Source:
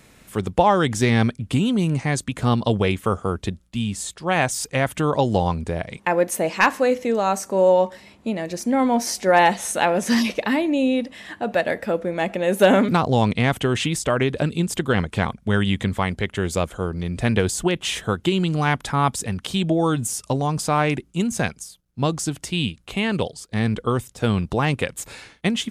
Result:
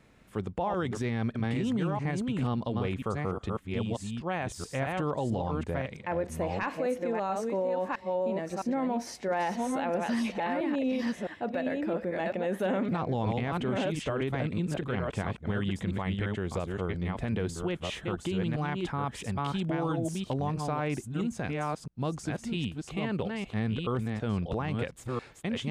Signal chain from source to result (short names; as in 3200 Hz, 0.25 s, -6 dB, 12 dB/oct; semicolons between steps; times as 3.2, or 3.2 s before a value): reverse delay 0.663 s, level -4.5 dB; LPF 2100 Hz 6 dB/oct; limiter -14.5 dBFS, peak gain reduction 9.5 dB; gain -7.5 dB